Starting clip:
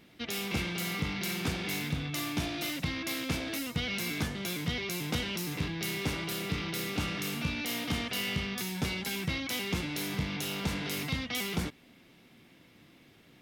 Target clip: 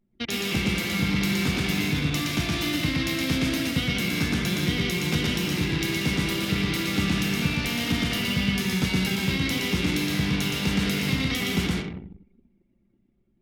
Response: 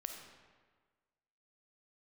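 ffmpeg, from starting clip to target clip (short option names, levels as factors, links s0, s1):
-filter_complex "[0:a]asplit=2[s0][s1];[1:a]atrim=start_sample=2205,highshelf=f=11000:g=-3,adelay=118[s2];[s1][s2]afir=irnorm=-1:irlink=0,volume=1.33[s3];[s0][s3]amix=inputs=2:normalize=0,acrossover=split=140|390|1200|6700[s4][s5][s6][s7][s8];[s4]acompressor=threshold=0.0158:ratio=4[s9];[s6]acompressor=threshold=0.00316:ratio=4[s10];[s7]acompressor=threshold=0.0178:ratio=4[s11];[s8]acompressor=threshold=0.00398:ratio=4[s12];[s9][s5][s10][s11][s12]amix=inputs=5:normalize=0,anlmdn=0.251,volume=2.37"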